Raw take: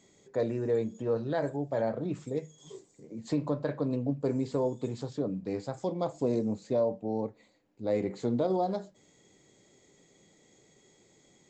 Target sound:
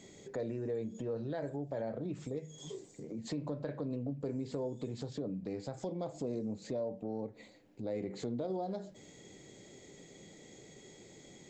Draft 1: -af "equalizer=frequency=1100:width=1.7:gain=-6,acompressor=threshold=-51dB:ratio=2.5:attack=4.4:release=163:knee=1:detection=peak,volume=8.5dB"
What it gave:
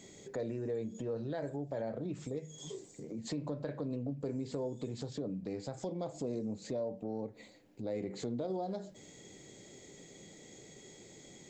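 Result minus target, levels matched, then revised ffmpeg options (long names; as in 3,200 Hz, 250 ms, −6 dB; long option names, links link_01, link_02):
8,000 Hz band +3.0 dB
-af "equalizer=frequency=1100:width=1.7:gain=-6,acompressor=threshold=-51dB:ratio=2.5:attack=4.4:release=163:knee=1:detection=peak,highshelf=frequency=6000:gain=-5.5,volume=8.5dB"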